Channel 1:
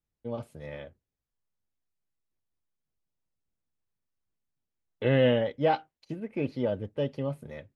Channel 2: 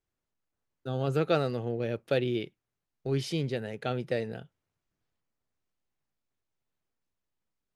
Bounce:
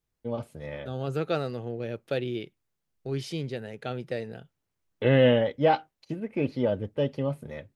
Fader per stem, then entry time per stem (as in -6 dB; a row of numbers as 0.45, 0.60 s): +3.0, -2.0 dB; 0.00, 0.00 s